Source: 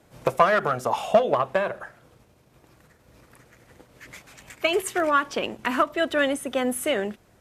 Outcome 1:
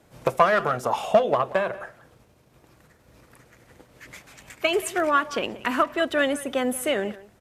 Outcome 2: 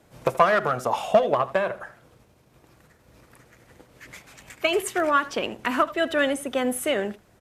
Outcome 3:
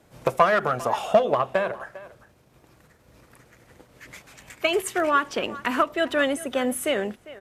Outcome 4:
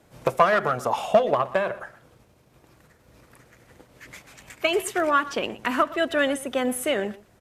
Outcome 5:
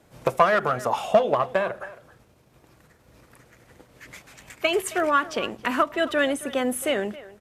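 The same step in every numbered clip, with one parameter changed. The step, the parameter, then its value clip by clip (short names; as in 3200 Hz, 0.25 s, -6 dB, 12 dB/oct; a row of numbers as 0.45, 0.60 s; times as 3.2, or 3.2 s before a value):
speakerphone echo, time: 180, 80, 400, 120, 270 ms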